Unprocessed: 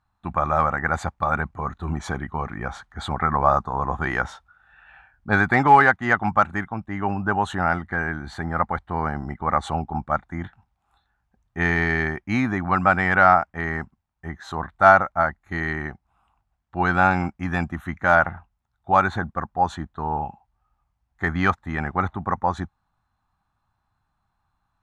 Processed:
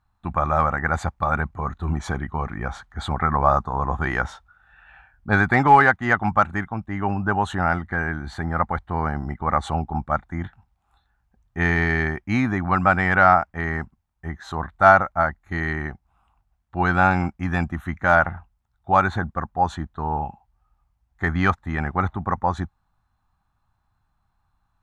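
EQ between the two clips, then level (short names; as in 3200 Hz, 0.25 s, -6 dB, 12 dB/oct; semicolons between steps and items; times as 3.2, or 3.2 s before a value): low shelf 83 Hz +8 dB; 0.0 dB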